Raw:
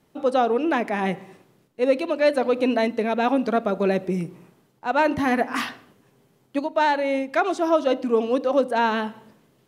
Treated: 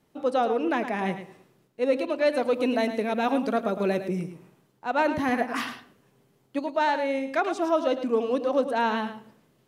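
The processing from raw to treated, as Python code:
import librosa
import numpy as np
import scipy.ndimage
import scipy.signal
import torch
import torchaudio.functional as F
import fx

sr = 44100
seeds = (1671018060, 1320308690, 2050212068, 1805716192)

y = fx.high_shelf(x, sr, hz=7300.0, db=8.5, at=(2.36, 4.09))
y = y + 10.0 ** (-10.5 / 20.0) * np.pad(y, (int(108 * sr / 1000.0), 0))[:len(y)]
y = F.gain(torch.from_numpy(y), -4.0).numpy()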